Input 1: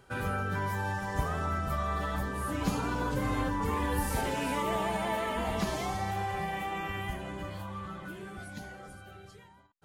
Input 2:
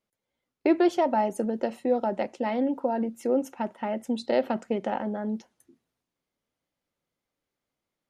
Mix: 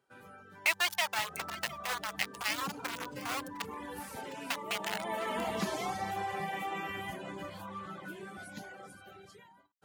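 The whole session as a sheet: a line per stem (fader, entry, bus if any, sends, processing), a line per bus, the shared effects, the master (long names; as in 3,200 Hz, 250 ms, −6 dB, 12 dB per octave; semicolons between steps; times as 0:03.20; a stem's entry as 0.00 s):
0:00.94 −17.5 dB → 0:01.43 −9 dB → 0:04.70 −9 dB → 0:05.35 0 dB, 0.00 s, no send, no echo send, high-pass filter 180 Hz 12 dB per octave
−3.0 dB, 0.00 s, muted 0:03.62–0:04.50, no send, echo send −16.5 dB, high shelf with overshoot 1,600 Hz +12 dB, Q 1.5; centre clipping without the shift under −22 dBFS; high-pass filter 820 Hz 24 dB per octave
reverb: not used
echo: single-tap delay 707 ms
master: reverb reduction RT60 0.59 s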